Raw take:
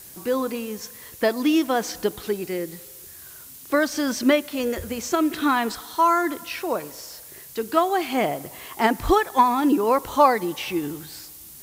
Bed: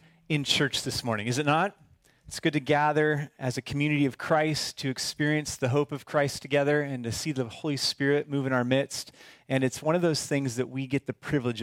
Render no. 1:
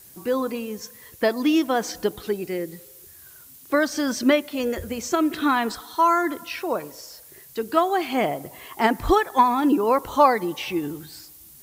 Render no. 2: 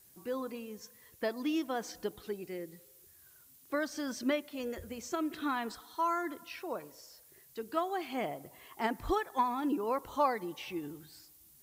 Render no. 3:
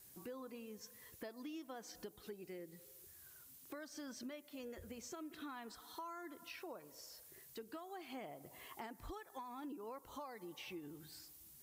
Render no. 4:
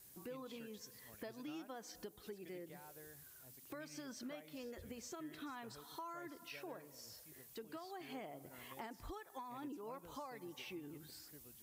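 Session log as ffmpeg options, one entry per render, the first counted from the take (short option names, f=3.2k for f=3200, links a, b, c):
-af "afftdn=nr=6:nf=-43"
-af "volume=-13dB"
-filter_complex "[0:a]acrossover=split=4800[a][b];[a]alimiter=level_in=4.5dB:limit=-24dB:level=0:latency=1:release=414,volume=-4.5dB[c];[c][b]amix=inputs=2:normalize=0,acompressor=threshold=-50dB:ratio=3"
-filter_complex "[1:a]volume=-35dB[a];[0:a][a]amix=inputs=2:normalize=0"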